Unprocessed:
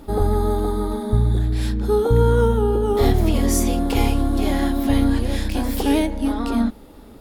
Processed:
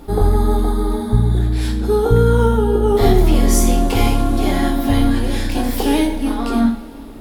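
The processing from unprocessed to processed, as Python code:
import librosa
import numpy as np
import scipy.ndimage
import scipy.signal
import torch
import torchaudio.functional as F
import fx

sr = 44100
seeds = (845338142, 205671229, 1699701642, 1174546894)

y = fx.rev_double_slope(x, sr, seeds[0], early_s=0.45, late_s=3.7, knee_db=-20, drr_db=1.5)
y = y * librosa.db_to_amplitude(2.0)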